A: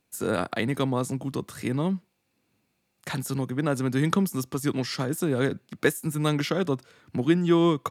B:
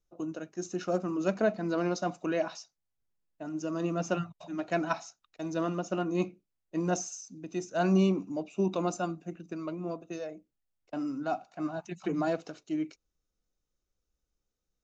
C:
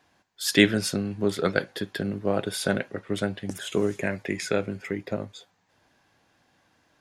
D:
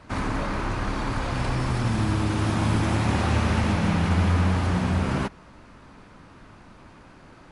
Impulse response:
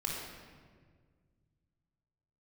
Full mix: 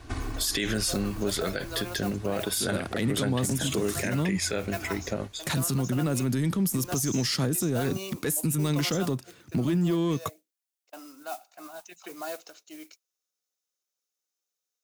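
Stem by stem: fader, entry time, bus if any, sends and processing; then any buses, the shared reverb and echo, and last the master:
-3.0 dB, 2.40 s, bus A, no send, sample leveller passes 1
-4.5 dB, 0.00 s, no bus, no send, HPF 520 Hz 12 dB/oct; modulation noise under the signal 19 dB
0.0 dB, 0.00 s, no bus, no send, dry
-7.0 dB, 0.00 s, bus A, no send, comb 2.7 ms, depth 87%; compressor, threshold -29 dBFS, peak gain reduction 13 dB; auto duck -12 dB, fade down 1.75 s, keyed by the second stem
bus A: 0.0 dB, low shelf 400 Hz +10 dB; limiter -19.5 dBFS, peak gain reduction 13.5 dB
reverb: off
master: high shelf 3300 Hz +12 dB; limiter -18 dBFS, peak gain reduction 17 dB

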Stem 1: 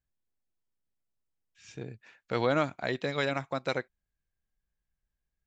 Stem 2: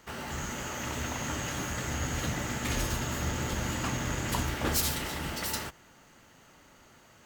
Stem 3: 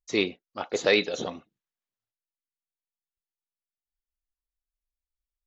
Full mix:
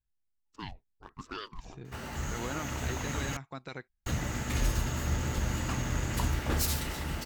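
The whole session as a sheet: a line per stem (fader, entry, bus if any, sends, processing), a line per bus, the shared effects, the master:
-7.5 dB, 0.00 s, bus A, no send, dry
-3.0 dB, 1.85 s, muted 3.37–4.06, no bus, no send, dry
-14.0 dB, 0.45 s, bus A, no send, Wiener smoothing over 15 samples; ring modulator with a swept carrier 480 Hz, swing 80%, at 1.1 Hz
bus A: 0.0 dB, bell 560 Hz -9 dB 0.42 oct; limiter -27.5 dBFS, peak gain reduction 5 dB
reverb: off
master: low shelf 87 Hz +12 dB; notch 3200 Hz, Q 26

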